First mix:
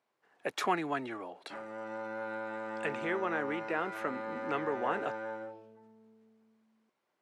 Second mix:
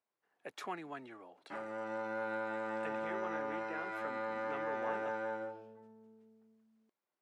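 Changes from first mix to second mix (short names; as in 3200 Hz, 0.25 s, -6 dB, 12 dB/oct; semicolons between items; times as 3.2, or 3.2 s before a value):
speech -11.5 dB; reverb: on, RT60 0.75 s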